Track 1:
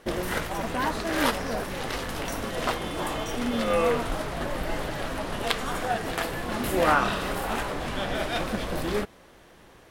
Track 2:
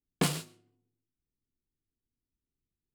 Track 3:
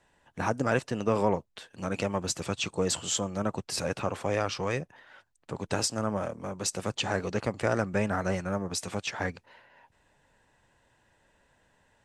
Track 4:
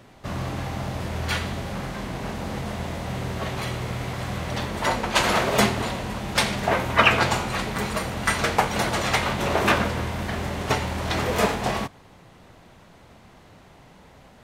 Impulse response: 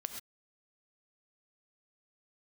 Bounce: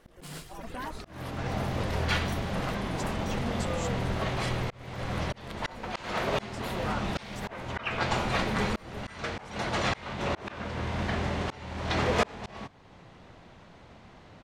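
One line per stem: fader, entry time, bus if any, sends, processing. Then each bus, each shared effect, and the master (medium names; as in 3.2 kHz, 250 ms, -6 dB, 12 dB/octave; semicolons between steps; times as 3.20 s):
-9.5 dB, 0.00 s, send -11 dB, reverb removal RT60 0.8 s; bass shelf 77 Hz +8 dB; compression 2.5:1, threshold -26 dBFS, peak gain reduction 6.5 dB
+0.5 dB, 0.00 s, send -3 dB, none
-13.5 dB, 0.70 s, no send, none
-1.5 dB, 0.80 s, no send, low-pass 5.6 kHz 12 dB/octave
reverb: on, pre-delay 3 ms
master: slow attack 518 ms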